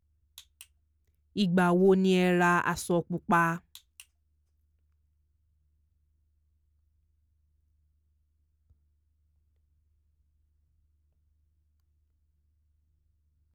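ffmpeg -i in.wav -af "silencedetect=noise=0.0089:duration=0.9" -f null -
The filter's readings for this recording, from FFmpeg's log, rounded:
silence_start: 4.02
silence_end: 13.55 | silence_duration: 9.53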